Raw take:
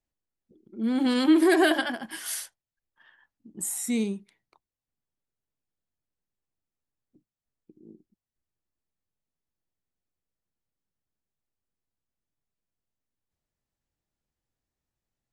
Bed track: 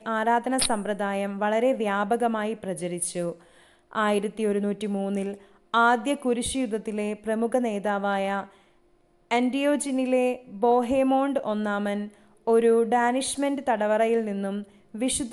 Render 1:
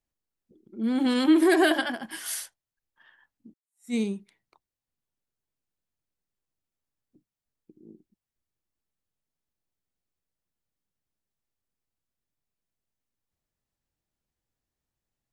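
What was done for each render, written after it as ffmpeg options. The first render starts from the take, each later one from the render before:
-filter_complex "[0:a]asettb=1/sr,asplit=3[s0][s1][s2];[s0]atrim=end=0.944[s3];[s1]atrim=start=0.94:end=1.51,asetpts=PTS-STARTPTS,afade=t=in:d=0.004:c=qsin,afade=t=out:st=0.566:d=0.004:c=qsin,bandreject=f=4700:w=12[s4];[s2]atrim=start=1.506[s5];[s3][s4]acrossfade=d=0.004:c1=hsin:c2=qsin[s6];[s6][s5]acrossfade=d=0.004:c1=qsin:c2=hsin,asplit=2[s7][s8];[s7]atrim=end=3.54,asetpts=PTS-STARTPTS,afade=t=out:st=3.536:d=0.004:c=hsin[s9];[s8]atrim=start=3.54,asetpts=PTS-STARTPTS,afade=t=in:d=0.4:c=exp[s10];[s9][s10]concat=n=2:v=0:a=1"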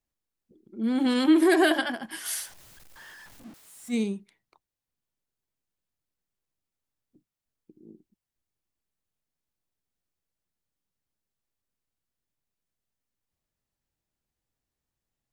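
-filter_complex "[0:a]asettb=1/sr,asplit=3[s0][s1][s2];[s0]atrim=end=2.254[s3];[s1]atrim=start=2.25:end=3.95,asetpts=PTS-STARTPTS,afade=t=in:d=0.004:c=qsin,afade=t=out:st=1.696:d=0.004:c=qsin,aeval=exprs='val(0)+0.5*0.00631*sgn(val(0))':c=same[s4];[s2]atrim=start=3.946[s5];[s3][s4]acrossfade=d=0.004:c1=hsin:c2=qsin[s6];[s6][s5]acrossfade=d=0.004:c1=qsin:c2=hsin"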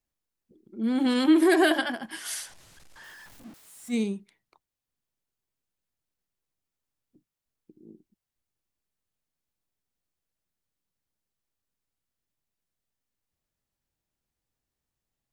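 -filter_complex "[0:a]asettb=1/sr,asplit=3[s0][s1][s2];[s0]atrim=end=2.104[s3];[s1]atrim=start=2.1:end=3.04,asetpts=PTS-STARTPTS,afade=t=in:d=0.004:c=qsin,afade=t=out:st=0.936:d=0.004:c=qsin,lowpass=9600[s4];[s2]atrim=start=3.036[s5];[s3][s4]acrossfade=d=0.004:c1=hsin:c2=qsin[s6];[s6][s5]acrossfade=d=0.004:c1=qsin:c2=hsin"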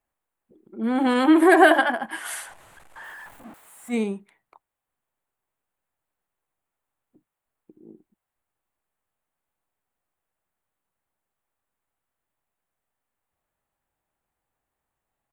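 -af "firequalizer=gain_entry='entry(160,0);entry(780,12);entry(5200,-10);entry(7900,1)':delay=0.05:min_phase=1"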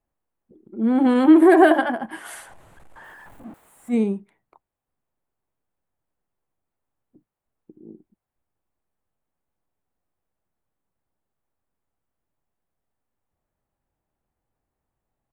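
-af "tiltshelf=f=690:g=6.5"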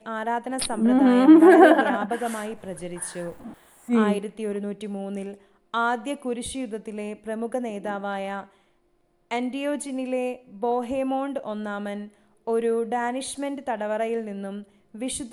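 -filter_complex "[1:a]volume=0.631[s0];[0:a][s0]amix=inputs=2:normalize=0"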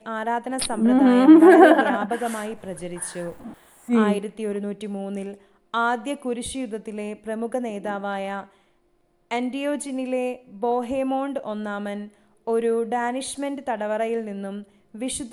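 -af "volume=1.19,alimiter=limit=0.794:level=0:latency=1"

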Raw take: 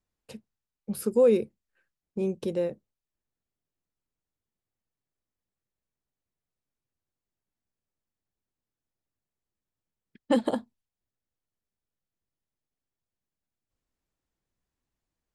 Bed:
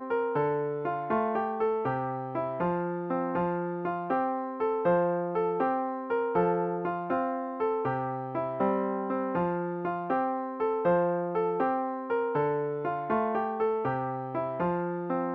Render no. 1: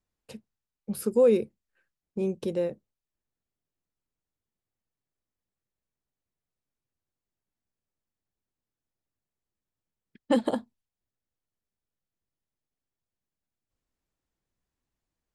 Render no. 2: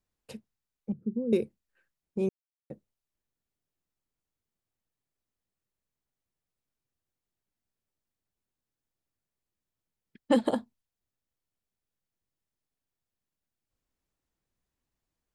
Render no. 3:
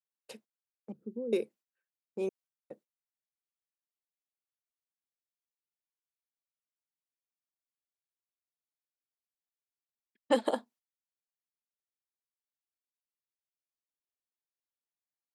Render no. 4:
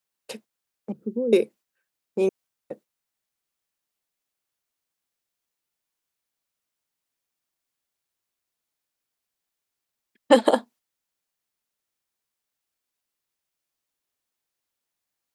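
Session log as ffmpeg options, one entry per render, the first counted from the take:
-af anull
-filter_complex "[0:a]asettb=1/sr,asplit=3[s0][s1][s2];[s0]atrim=end=0.924[s3];[s1]atrim=start=0.92:end=1.33,asetpts=PTS-STARTPTS,afade=t=in:d=0.004:c=qsin,afade=t=out:st=0.406:d=0.004:c=qsin,asuperpass=centerf=170:order=4:qfactor=1.1[s4];[s2]atrim=start=1.326[s5];[s3][s4]acrossfade=d=0.004:c1=hsin:c2=qsin[s6];[s6][s5]acrossfade=d=0.004:c1=qsin:c2=hsin,asplit=3[s7][s8][s9];[s7]atrim=end=2.29,asetpts=PTS-STARTPTS,afade=t=out:st=2.286:d=0.004:c=hsin[s10];[s8]atrim=start=2.29:end=2.7,asetpts=PTS-STARTPTS,volume=0[s11];[s9]atrim=start=2.7,asetpts=PTS-STARTPTS,afade=t=in:d=0.004:c=hsin[s12];[s10][s11][s12]concat=n=3:v=0:a=1"
-af "highpass=400,agate=range=0.141:threshold=0.00126:ratio=16:detection=peak"
-af "volume=3.76,alimiter=limit=0.794:level=0:latency=1"

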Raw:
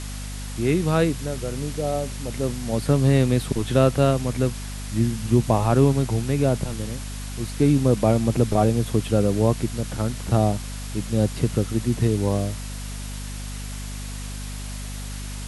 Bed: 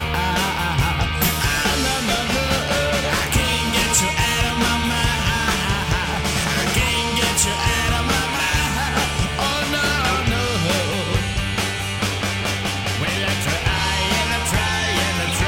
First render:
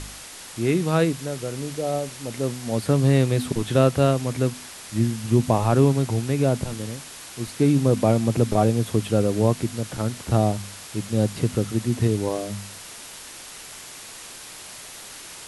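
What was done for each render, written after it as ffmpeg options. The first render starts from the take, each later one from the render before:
-af "bandreject=f=50:t=h:w=4,bandreject=f=100:t=h:w=4,bandreject=f=150:t=h:w=4,bandreject=f=200:t=h:w=4,bandreject=f=250:t=h:w=4"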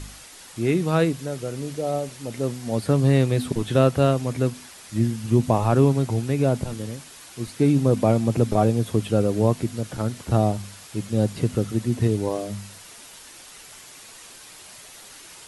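-af "afftdn=nr=6:nf=-41"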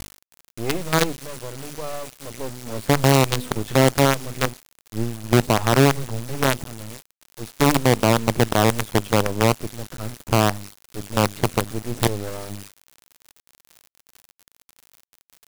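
-af "acrusher=bits=3:dc=4:mix=0:aa=0.000001"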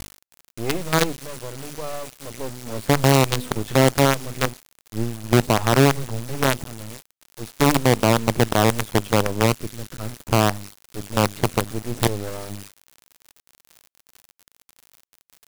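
-filter_complex "[0:a]asettb=1/sr,asplit=3[s0][s1][s2];[s0]atrim=end=9.464[s3];[s1]atrim=start=9.46:end=9.99,asetpts=PTS-STARTPTS,afade=t=in:d=0.004:c=qsin,afade=t=out:st=0.526:d=0.004:c=qsin,equalizer=f=750:t=o:w=0.94:g=-6[s4];[s2]atrim=start=9.986[s5];[s3][s4]acrossfade=d=0.004:c1=hsin:c2=qsin[s6];[s6][s5]acrossfade=d=0.004:c1=qsin:c2=hsin"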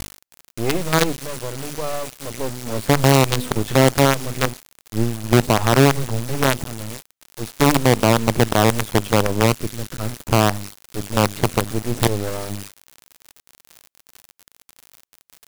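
-af "volume=1.78,alimiter=limit=0.708:level=0:latency=1"

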